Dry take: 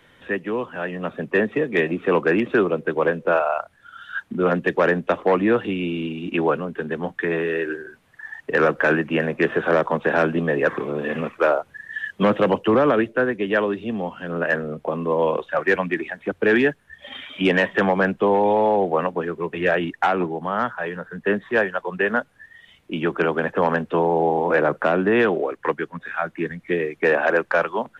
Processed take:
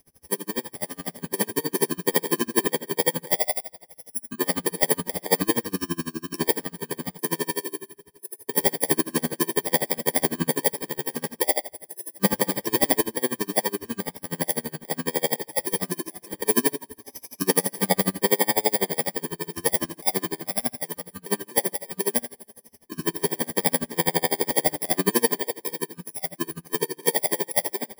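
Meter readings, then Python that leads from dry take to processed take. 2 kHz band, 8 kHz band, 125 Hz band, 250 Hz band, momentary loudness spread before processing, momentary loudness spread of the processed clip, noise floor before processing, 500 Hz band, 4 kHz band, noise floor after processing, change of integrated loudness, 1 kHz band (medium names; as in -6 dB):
-9.5 dB, no reading, -5.0 dB, -5.5 dB, 10 LU, 11 LU, -57 dBFS, -8.0 dB, +5.5 dB, -60 dBFS, -3.0 dB, -7.5 dB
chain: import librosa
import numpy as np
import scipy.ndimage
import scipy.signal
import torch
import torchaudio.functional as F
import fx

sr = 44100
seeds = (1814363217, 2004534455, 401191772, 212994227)

y = fx.bit_reversed(x, sr, seeds[0], block=32)
y = fx.rev_double_slope(y, sr, seeds[1], early_s=0.46, late_s=2.7, knee_db=-22, drr_db=3.0)
y = y * 10.0 ** (-31 * (0.5 - 0.5 * np.cos(2.0 * np.pi * 12.0 * np.arange(len(y)) / sr)) / 20.0)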